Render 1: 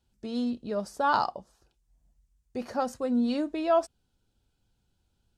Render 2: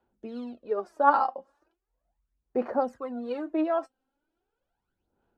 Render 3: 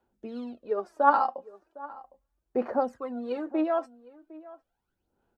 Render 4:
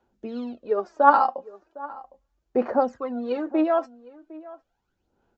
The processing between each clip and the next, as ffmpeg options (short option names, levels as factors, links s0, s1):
-filter_complex "[0:a]aphaser=in_gain=1:out_gain=1:delay=3.8:decay=0.7:speed=0.38:type=sinusoidal,acrossover=split=280 2000:gain=0.1 1 0.0891[s0][s1][s2];[s0][s1][s2]amix=inputs=3:normalize=0"
-filter_complex "[0:a]asplit=2[s0][s1];[s1]adelay=758,volume=0.112,highshelf=f=4000:g=-17.1[s2];[s0][s2]amix=inputs=2:normalize=0"
-af "aresample=16000,aresample=44100,volume=1.78"